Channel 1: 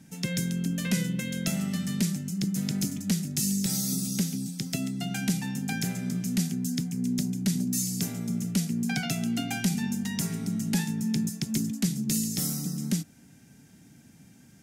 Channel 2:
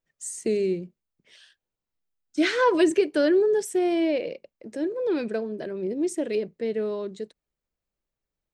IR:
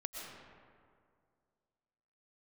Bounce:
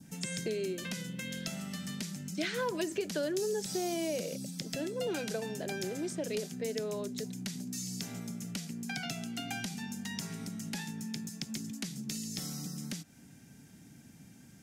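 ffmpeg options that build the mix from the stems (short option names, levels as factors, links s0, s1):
-filter_complex "[0:a]acompressor=threshold=0.0316:ratio=2,volume=0.891[s0];[1:a]equalizer=f=1200:w=1.5:g=-3.5,volume=0.841[s1];[s0][s1]amix=inputs=2:normalize=0,adynamicequalizer=threshold=0.00316:dfrequency=2100:dqfactor=1.7:tfrequency=2100:tqfactor=1.7:attack=5:release=100:ratio=0.375:range=2.5:mode=cutabove:tftype=bell,acrossover=split=550|6300[s2][s3][s4];[s2]acompressor=threshold=0.01:ratio=4[s5];[s3]acompressor=threshold=0.0178:ratio=4[s6];[s4]acompressor=threshold=0.00316:ratio=4[s7];[s5][s6][s7]amix=inputs=3:normalize=0"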